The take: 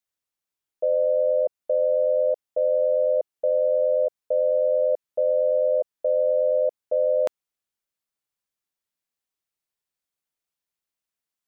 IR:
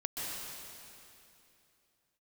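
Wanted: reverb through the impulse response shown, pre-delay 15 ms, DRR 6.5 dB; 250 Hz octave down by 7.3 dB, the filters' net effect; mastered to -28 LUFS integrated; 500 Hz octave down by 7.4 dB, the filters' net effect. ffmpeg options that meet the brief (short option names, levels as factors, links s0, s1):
-filter_complex "[0:a]equalizer=f=250:t=o:g=-6.5,equalizer=f=500:t=o:g=-7.5,asplit=2[s0][s1];[1:a]atrim=start_sample=2205,adelay=15[s2];[s1][s2]afir=irnorm=-1:irlink=0,volume=0.299[s3];[s0][s3]amix=inputs=2:normalize=0,volume=1.19"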